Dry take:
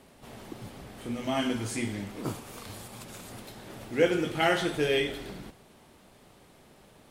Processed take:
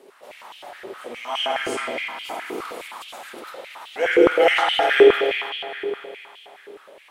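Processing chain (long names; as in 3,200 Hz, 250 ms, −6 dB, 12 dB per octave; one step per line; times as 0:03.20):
spring reverb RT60 3 s, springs 54 ms, chirp 30 ms, DRR −5 dB
high-pass on a step sequencer 9.6 Hz 400–3,000 Hz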